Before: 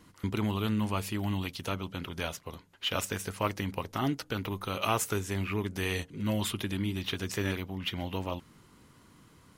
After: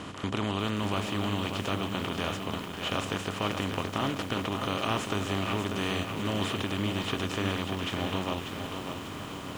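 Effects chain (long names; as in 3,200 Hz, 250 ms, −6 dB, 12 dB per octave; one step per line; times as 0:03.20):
compressor on every frequency bin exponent 0.4
high-frequency loss of the air 82 metres
feedback echo at a low word length 592 ms, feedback 55%, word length 7 bits, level −6 dB
level −4.5 dB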